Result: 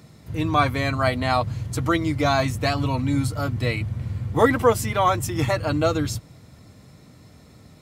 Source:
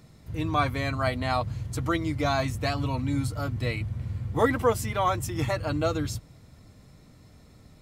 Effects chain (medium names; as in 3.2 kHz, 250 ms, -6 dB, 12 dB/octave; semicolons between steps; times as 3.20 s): high-pass 78 Hz; trim +5.5 dB